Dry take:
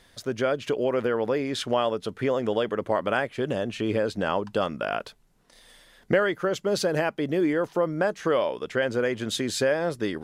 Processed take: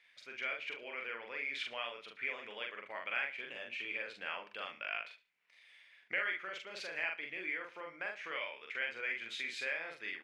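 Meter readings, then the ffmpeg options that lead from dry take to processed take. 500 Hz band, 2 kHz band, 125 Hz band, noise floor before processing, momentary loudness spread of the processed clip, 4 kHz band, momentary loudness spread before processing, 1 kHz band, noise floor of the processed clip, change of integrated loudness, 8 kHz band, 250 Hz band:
−24.0 dB, −5.0 dB, below −35 dB, −60 dBFS, 7 LU, −9.5 dB, 4 LU, −16.0 dB, −67 dBFS, −13.0 dB, below −20 dB, −29.5 dB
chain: -filter_complex "[0:a]bandpass=frequency=2300:width_type=q:width=6.3:csg=0,asplit=2[link_01][link_02];[link_02]adelay=43,volume=-2.5dB[link_03];[link_01][link_03]amix=inputs=2:normalize=0,asplit=2[link_04][link_05];[link_05]aecho=0:1:72|144:0.158|0.0396[link_06];[link_04][link_06]amix=inputs=2:normalize=0,volume=2.5dB"

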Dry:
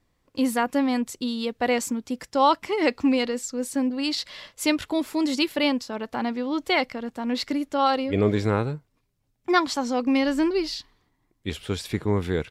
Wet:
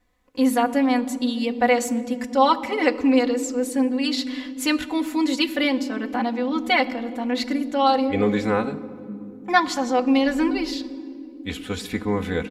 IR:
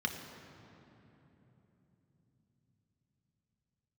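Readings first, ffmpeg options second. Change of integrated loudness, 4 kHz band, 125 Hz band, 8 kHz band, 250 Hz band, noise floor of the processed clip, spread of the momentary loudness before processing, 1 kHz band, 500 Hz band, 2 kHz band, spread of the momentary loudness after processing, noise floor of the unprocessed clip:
+2.5 dB, +1.5 dB, −4.0 dB, +1.5 dB, +3.0 dB, −40 dBFS, 9 LU, +3.5 dB, +2.5 dB, +3.5 dB, 11 LU, −72 dBFS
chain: -filter_complex "[0:a]bandreject=frequency=450:width=12,aecho=1:1:4:0.9,asplit=2[link_01][link_02];[1:a]atrim=start_sample=2205,asetrate=70560,aresample=44100[link_03];[link_02][link_03]afir=irnorm=-1:irlink=0,volume=-10dB[link_04];[link_01][link_04]amix=inputs=2:normalize=0"

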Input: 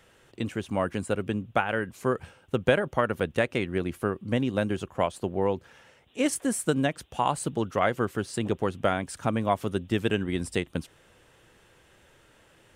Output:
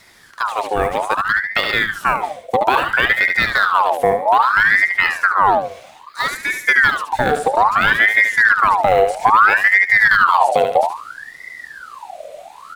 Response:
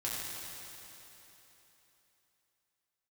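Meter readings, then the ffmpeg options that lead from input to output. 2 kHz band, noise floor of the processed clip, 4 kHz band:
+21.5 dB, −42 dBFS, +13.0 dB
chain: -filter_complex "[0:a]acrossover=split=3000[link_01][link_02];[link_02]acompressor=threshold=-50dB:ratio=4:attack=1:release=60[link_03];[link_01][link_03]amix=inputs=2:normalize=0,acrossover=split=1600[link_04][link_05];[link_05]acrusher=bits=4:mode=log:mix=0:aa=0.000001[link_06];[link_04][link_06]amix=inputs=2:normalize=0,equalizer=frequency=680:width=0.42:gain=-10,acontrast=73,asubboost=boost=10.5:cutoff=87,aecho=1:1:73|146|219|292:0.398|0.139|0.0488|0.0171,alimiter=level_in=10.5dB:limit=-1dB:release=50:level=0:latency=1,aeval=exprs='val(0)*sin(2*PI*1300*n/s+1300*0.55/0.61*sin(2*PI*0.61*n/s))':channel_layout=same"

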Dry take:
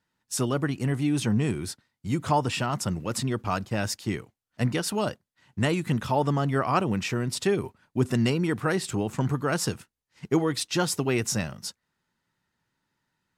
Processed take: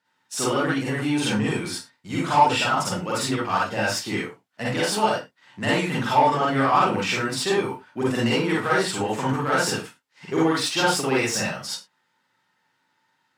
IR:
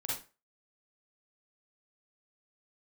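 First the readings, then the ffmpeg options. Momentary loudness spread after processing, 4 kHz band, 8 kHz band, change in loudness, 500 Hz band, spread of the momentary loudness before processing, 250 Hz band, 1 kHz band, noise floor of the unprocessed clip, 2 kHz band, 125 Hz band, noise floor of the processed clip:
11 LU, +7.0 dB, +3.5 dB, +4.0 dB, +4.0 dB, 8 LU, +2.0 dB, +9.0 dB, −83 dBFS, +8.5 dB, −2.5 dB, −71 dBFS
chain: -filter_complex "[0:a]asplit=2[link_01][link_02];[link_02]highpass=frequency=720:poles=1,volume=16dB,asoftclip=type=tanh:threshold=-10dB[link_03];[link_01][link_03]amix=inputs=2:normalize=0,lowpass=frequency=3800:poles=1,volume=-6dB,highpass=120[link_04];[1:a]atrim=start_sample=2205,afade=type=out:start_time=0.22:duration=0.01,atrim=end_sample=10143[link_05];[link_04][link_05]afir=irnorm=-1:irlink=0,volume=-1.5dB"

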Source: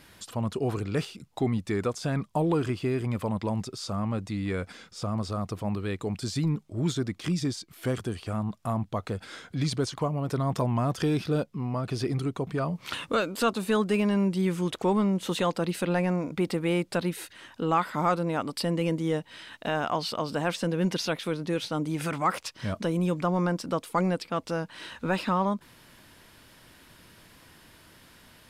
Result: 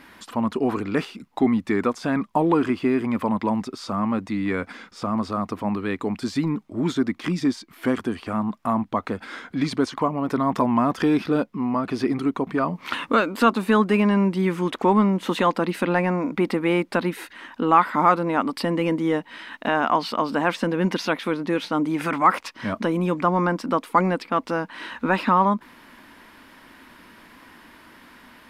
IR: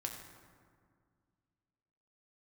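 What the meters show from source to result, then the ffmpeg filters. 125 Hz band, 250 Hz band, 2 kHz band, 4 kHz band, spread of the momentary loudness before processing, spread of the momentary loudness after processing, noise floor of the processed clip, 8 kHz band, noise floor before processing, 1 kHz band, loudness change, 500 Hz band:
−0.5 dB, +6.5 dB, +8.0 dB, +1.5 dB, 7 LU, 9 LU, −51 dBFS, −3.0 dB, −56 dBFS, +9.0 dB, +6.0 dB, +5.0 dB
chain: -af "equalizer=frequency=125:width_type=o:width=1:gain=-9,equalizer=frequency=250:width_type=o:width=1:gain=12,equalizer=frequency=1000:width_type=o:width=1:gain=9,equalizer=frequency=2000:width_type=o:width=1:gain=7,equalizer=frequency=8000:width_type=o:width=1:gain=-4"

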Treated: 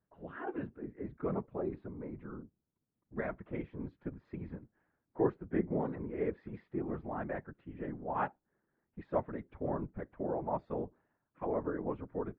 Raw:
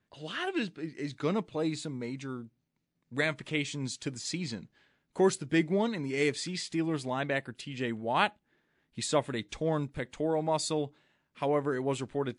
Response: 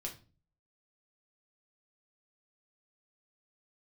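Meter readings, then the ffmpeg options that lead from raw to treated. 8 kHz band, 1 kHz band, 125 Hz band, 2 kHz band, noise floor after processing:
below −40 dB, −6.0 dB, −6.5 dB, −14.0 dB, below −85 dBFS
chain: -af "afftfilt=real='hypot(re,im)*cos(2*PI*random(0))':imag='hypot(re,im)*sin(2*PI*random(1))':win_size=512:overlap=0.75,lowpass=frequency=1500:width=0.5412,lowpass=frequency=1500:width=1.3066"

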